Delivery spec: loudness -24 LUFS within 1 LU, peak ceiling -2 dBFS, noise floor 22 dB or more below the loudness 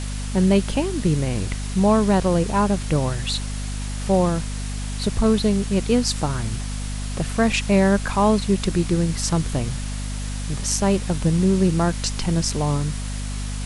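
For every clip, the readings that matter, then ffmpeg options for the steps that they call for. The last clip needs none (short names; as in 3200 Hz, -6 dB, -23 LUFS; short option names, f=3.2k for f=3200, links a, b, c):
hum 50 Hz; harmonics up to 250 Hz; hum level -25 dBFS; noise floor -28 dBFS; noise floor target -44 dBFS; loudness -22.0 LUFS; peak -5.0 dBFS; loudness target -24.0 LUFS
-> -af "bandreject=f=50:t=h:w=4,bandreject=f=100:t=h:w=4,bandreject=f=150:t=h:w=4,bandreject=f=200:t=h:w=4,bandreject=f=250:t=h:w=4"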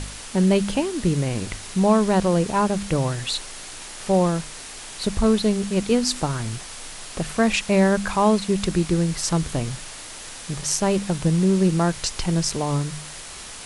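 hum none; noise floor -38 dBFS; noise floor target -44 dBFS
-> -af "afftdn=nr=6:nf=-38"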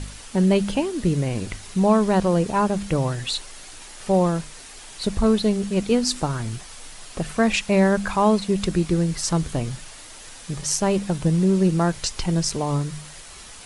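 noise floor -42 dBFS; noise floor target -44 dBFS
-> -af "afftdn=nr=6:nf=-42"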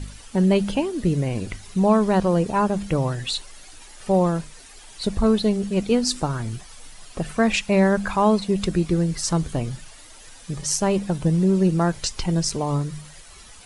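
noise floor -45 dBFS; loudness -22.0 LUFS; peak -6.0 dBFS; loudness target -24.0 LUFS
-> -af "volume=-2dB"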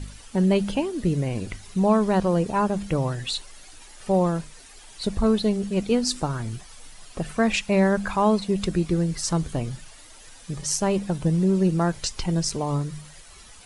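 loudness -24.0 LUFS; peak -8.0 dBFS; noise floor -47 dBFS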